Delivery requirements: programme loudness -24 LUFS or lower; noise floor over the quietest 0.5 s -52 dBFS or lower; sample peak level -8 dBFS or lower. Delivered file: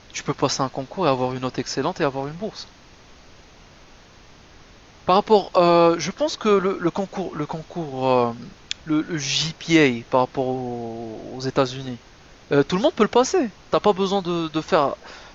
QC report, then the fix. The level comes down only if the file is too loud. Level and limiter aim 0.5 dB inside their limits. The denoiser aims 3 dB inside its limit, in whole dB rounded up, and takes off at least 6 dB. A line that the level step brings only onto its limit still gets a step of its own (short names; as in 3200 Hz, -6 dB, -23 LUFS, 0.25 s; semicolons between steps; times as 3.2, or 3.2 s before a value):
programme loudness -22.0 LUFS: fail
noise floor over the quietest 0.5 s -48 dBFS: fail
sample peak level -4.5 dBFS: fail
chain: denoiser 6 dB, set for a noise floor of -48 dBFS; gain -2.5 dB; limiter -8.5 dBFS